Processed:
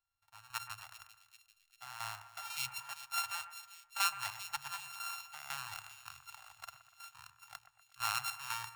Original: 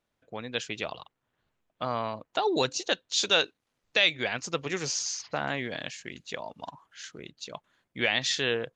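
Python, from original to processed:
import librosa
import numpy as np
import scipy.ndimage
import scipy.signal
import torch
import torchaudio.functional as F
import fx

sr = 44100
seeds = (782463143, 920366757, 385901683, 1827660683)

p1 = np.r_[np.sort(x[:len(x) // 32 * 32].reshape(-1, 32), axis=1).ravel(), x[len(x) // 32 * 32:]]
p2 = fx.chopper(p1, sr, hz=2.0, depth_pct=65, duty_pct=60)
p3 = scipy.signal.sosfilt(scipy.signal.ellip(3, 1.0, 40, [110.0, 820.0], 'bandstop', fs=sr, output='sos'), p2)
p4 = fx.hum_notches(p3, sr, base_hz=60, count=2)
p5 = p4 + fx.echo_split(p4, sr, split_hz=2300.0, low_ms=122, high_ms=393, feedback_pct=52, wet_db=-12.5, dry=0)
p6 = fx.spec_repair(p5, sr, seeds[0], start_s=2.48, length_s=0.32, low_hz=200.0, high_hz=2000.0, source='both')
y = F.gain(torch.from_numpy(p6), -7.5).numpy()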